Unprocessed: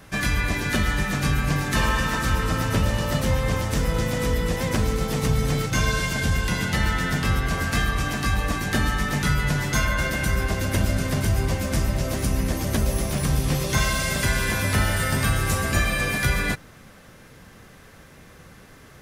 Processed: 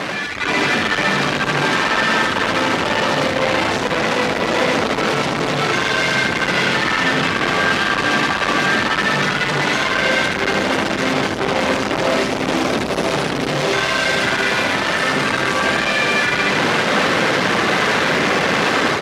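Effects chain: one-bit comparator; reverb removal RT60 1.6 s; in parallel at -2.5 dB: peak limiter -29.5 dBFS, peak gain reduction 9.5 dB; on the sum: level rider gain up to 13 dB; overload inside the chain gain 14 dB; band-pass 260–3500 Hz; on a send: delay 76 ms -4.5 dB

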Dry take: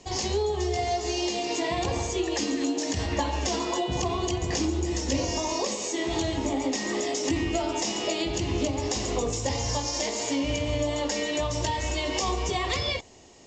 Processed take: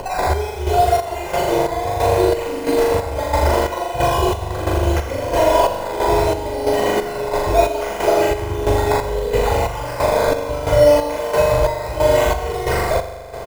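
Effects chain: random holes in the spectrogram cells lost 38%; in parallel at 0 dB: peak limiter -24.5 dBFS, peak gain reduction 10.5 dB; on the sum: decimation with a swept rate 12×, swing 60% 0.71 Hz; on a send: flutter echo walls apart 7 m, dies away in 1.4 s; on the sum: upward compressor, threshold -27 dBFS; bass shelf 180 Hz +6.5 dB; square tremolo 1.5 Hz, depth 60%, duty 50%; peaking EQ 700 Hz +14 dB 0.68 oct; comb 2 ms, depth 55%; trim -1 dB

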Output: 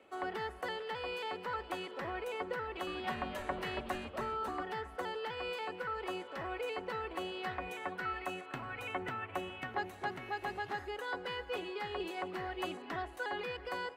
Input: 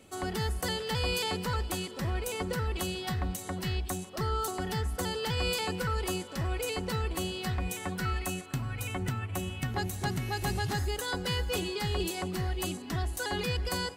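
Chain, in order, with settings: three-band isolator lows -21 dB, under 340 Hz, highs -22 dB, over 2.8 kHz; gain riding within 4 dB 0.5 s; 2.59–4.63 s: frequency-shifting echo 279 ms, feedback 34%, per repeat -140 Hz, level -5 dB; trim -1.5 dB

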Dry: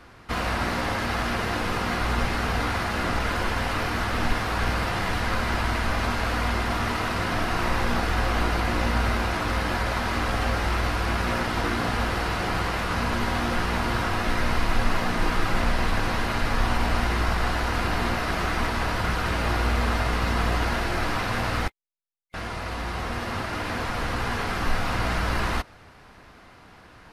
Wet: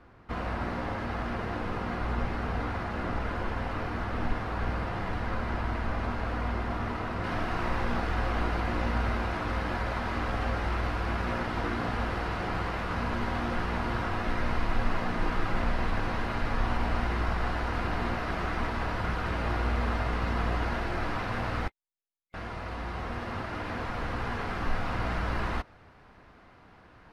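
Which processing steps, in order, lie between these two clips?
low-pass 1.1 kHz 6 dB/octave, from 7.24 s 2.1 kHz; trim -4.5 dB

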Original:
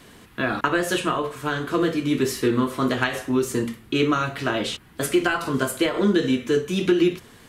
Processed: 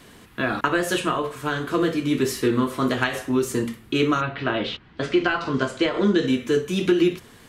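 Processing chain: 4.20–6.26 s: low-pass 3.4 kHz -> 7.8 kHz 24 dB/octave

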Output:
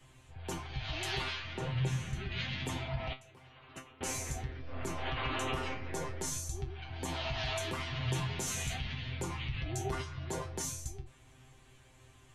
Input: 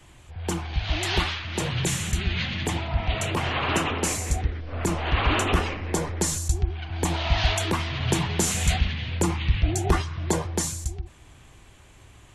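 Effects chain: 1.53–2.32 s: low-pass 1.7 kHz 6 dB/octave; 3.13–4.01 s: gate -19 dBFS, range -23 dB; peak limiter -18 dBFS, peak gain reduction 7.5 dB; feedback comb 130 Hz, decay 0.2 s, harmonics all, mix 90%

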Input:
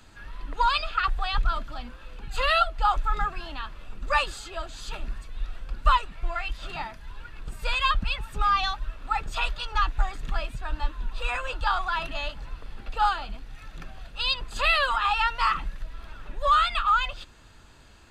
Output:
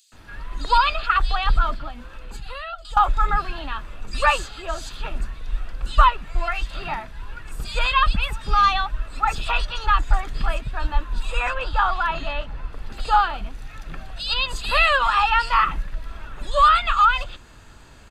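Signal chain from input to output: 1.75–2.85 s: compression 10:1, threshold -36 dBFS, peak gain reduction 19 dB; 11.50–12.73 s: treble shelf 4.5 kHz -9 dB; bands offset in time highs, lows 120 ms, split 3.8 kHz; trim +6 dB

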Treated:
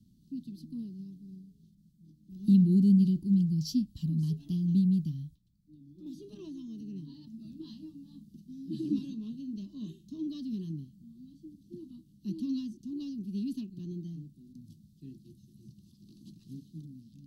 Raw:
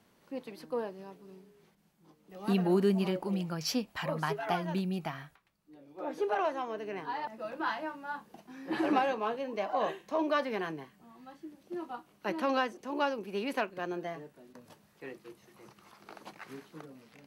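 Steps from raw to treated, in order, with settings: inverse Chebyshev band-stop 480–2300 Hz, stop band 40 dB; tone controls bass +12 dB, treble -7 dB; 6.06–6.81 s: three bands compressed up and down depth 100%

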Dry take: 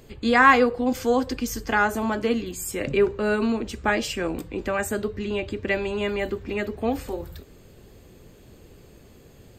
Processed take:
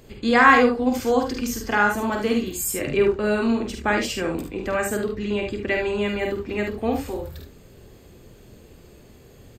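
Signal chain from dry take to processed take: 2.12–2.74 s: treble shelf 7.8 kHz +8.5 dB; multi-tap echo 48/73 ms -5.5/-7 dB

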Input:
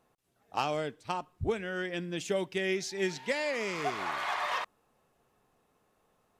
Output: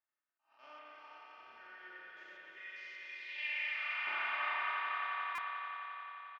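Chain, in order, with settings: spectrogram pixelated in time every 200 ms; comb 3.3 ms, depth 74%; spring tank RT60 2.5 s, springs 30 ms, chirp 25 ms, DRR -3.5 dB; band-pass sweep 4.9 kHz -> 1.4 kHz, 3.21–3.87 s; 2.58–4.07 s: high-pass 1.1 kHz 12 dB/octave; low-pass sweep 1.7 kHz -> 3.4 kHz, 2.60–3.84 s; echo with a slow build-up 88 ms, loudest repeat 5, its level -8 dB; buffer glitch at 5.35 s, samples 128, times 10; attacks held to a fixed rise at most 170 dB/s; trim -7 dB

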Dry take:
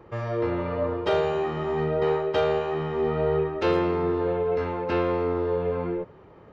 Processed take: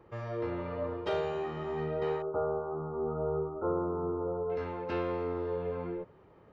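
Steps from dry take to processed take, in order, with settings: 2.22–4.50 s: brick-wall FIR low-pass 1.5 kHz; trim -8.5 dB

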